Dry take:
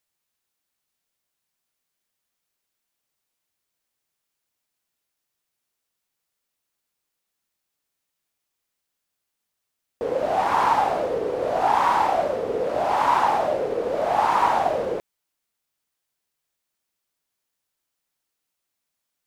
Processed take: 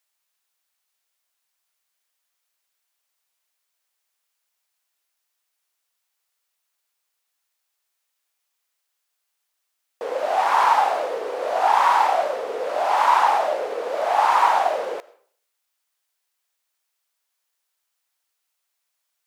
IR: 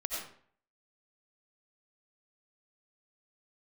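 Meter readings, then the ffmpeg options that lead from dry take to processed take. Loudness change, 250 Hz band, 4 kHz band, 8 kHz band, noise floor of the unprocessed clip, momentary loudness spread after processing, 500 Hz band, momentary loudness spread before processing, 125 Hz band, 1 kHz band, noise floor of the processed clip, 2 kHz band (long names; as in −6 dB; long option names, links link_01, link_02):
+2.0 dB, −10.0 dB, +4.0 dB, can't be measured, −81 dBFS, 11 LU, −1.0 dB, 7 LU, below −20 dB, +2.5 dB, −77 dBFS, +3.5 dB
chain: -filter_complex "[0:a]highpass=650,asplit=2[link_01][link_02];[1:a]atrim=start_sample=2205,lowshelf=frequency=370:gain=-10.5[link_03];[link_02][link_03]afir=irnorm=-1:irlink=0,volume=-18.5dB[link_04];[link_01][link_04]amix=inputs=2:normalize=0,volume=3dB"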